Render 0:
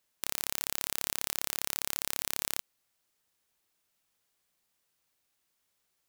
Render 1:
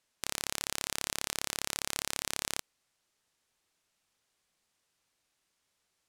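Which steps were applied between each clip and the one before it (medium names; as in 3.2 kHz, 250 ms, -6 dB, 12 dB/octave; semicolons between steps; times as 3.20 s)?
low-pass 9.3 kHz 12 dB/octave; trim +2 dB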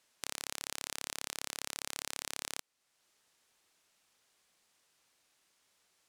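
bass shelf 150 Hz -9 dB; compression 1.5:1, threshold -58 dBFS, peak gain reduction 11 dB; trim +5.5 dB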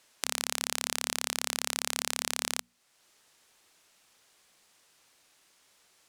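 hum notches 60/120/180/240 Hz; trim +8.5 dB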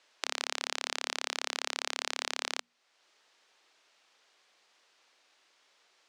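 three-band isolator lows -22 dB, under 290 Hz, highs -22 dB, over 6.1 kHz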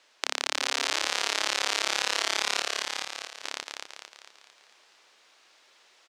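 chunks repeated in reverse 605 ms, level -5 dB; on a send: frequency-shifting echo 225 ms, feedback 50%, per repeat +37 Hz, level -4 dB; on the sum: trim +5 dB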